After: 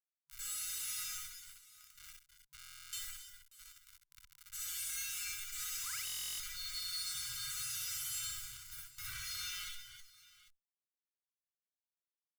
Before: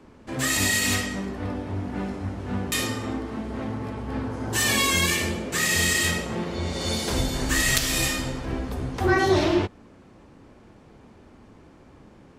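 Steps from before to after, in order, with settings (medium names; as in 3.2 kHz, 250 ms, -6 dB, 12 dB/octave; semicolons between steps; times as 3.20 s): pre-emphasis filter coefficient 0.97; feedback comb 180 Hz, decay 0.29 s, harmonics all, mix 100%; 5.76–6.00 s: painted sound rise 560–3200 Hz -44 dBFS; fuzz box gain 57 dB, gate -56 dBFS; valve stage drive 47 dB, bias 0.25; comb 1.4 ms, depth 94%; peak limiter -50 dBFS, peak gain reduction 13 dB; FFT band-reject 150–1000 Hz; 7.15–9.19 s: peaking EQ 200 Hz +14.5 dB 2.4 oct; multi-tap echo 60/63/127/317/319/794 ms -4/-3.5/-13/-10.5/-12/-17 dB; buffer glitch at 2.58/6.05 s, samples 1024, times 14; trim +12 dB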